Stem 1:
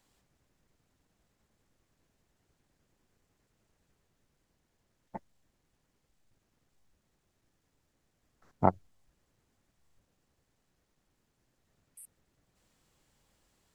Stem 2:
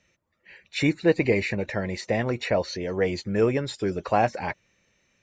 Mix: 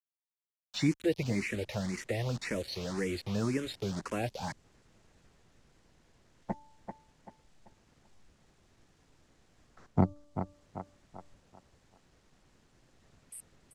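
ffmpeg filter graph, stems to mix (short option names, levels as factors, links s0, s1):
-filter_complex "[0:a]bandreject=f=292.6:t=h:w=4,bandreject=f=585.2:t=h:w=4,bandreject=f=877.8:t=h:w=4,bandreject=f=1170.4:t=h:w=4,dynaudnorm=f=120:g=5:m=3.16,adelay=1350,volume=1.06,asplit=2[s0][s1];[s1]volume=0.282[s2];[1:a]acrusher=bits=5:mix=0:aa=0.000001,asplit=2[s3][s4];[s4]afreqshift=1.9[s5];[s3][s5]amix=inputs=2:normalize=1,volume=0.794[s6];[s2]aecho=0:1:387|774|1161|1548|1935:1|0.35|0.122|0.0429|0.015[s7];[s0][s6][s7]amix=inputs=3:normalize=0,lowpass=7700,acrossover=split=340|3000[s8][s9][s10];[s9]acompressor=threshold=0.0112:ratio=3[s11];[s8][s11][s10]amix=inputs=3:normalize=0"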